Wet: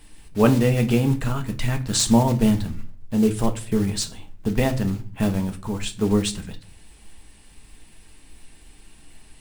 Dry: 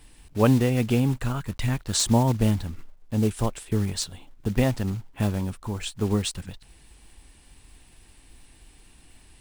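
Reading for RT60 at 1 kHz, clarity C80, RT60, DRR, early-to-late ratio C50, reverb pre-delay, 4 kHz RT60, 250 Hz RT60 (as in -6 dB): 0.40 s, 20.5 dB, 0.45 s, 5.5 dB, 15.0 dB, 4 ms, 0.30 s, 0.75 s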